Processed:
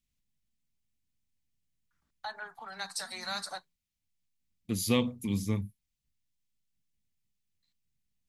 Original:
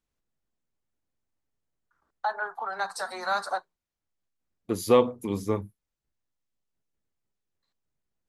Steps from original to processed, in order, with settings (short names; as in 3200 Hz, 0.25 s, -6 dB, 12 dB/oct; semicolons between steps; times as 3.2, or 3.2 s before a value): band shelf 710 Hz -15 dB 2.6 oct; gain +2.5 dB